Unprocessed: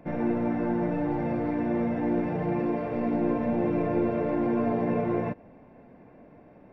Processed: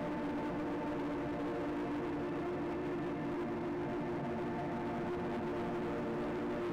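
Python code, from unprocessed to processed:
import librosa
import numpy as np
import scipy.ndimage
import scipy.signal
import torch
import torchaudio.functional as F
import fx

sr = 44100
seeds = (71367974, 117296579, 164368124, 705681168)

y = x + 10.0 ** (-3.0 / 20.0) * np.pad(x, (int(262 * sr / 1000.0), 0))[:len(x)]
y = fx.paulstretch(y, sr, seeds[0], factor=43.0, window_s=0.1, from_s=1.56)
y = scipy.signal.sosfilt(scipy.signal.butter(2, 78.0, 'highpass', fs=sr, output='sos'), y)
y = np.clip(10.0 ** (29.5 / 20.0) * y, -1.0, 1.0) / 10.0 ** (29.5 / 20.0)
y = y * librosa.db_to_amplitude(-6.5)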